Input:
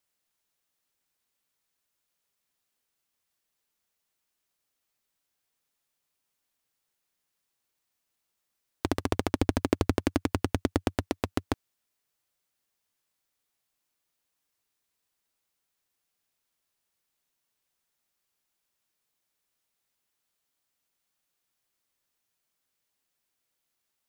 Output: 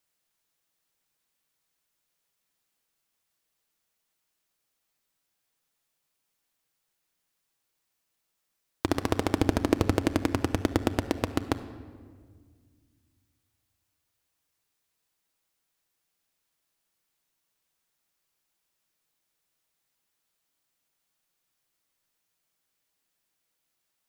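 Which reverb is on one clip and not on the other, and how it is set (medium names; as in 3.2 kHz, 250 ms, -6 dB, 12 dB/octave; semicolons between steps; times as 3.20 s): simulated room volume 2500 m³, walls mixed, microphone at 0.63 m; trim +1.5 dB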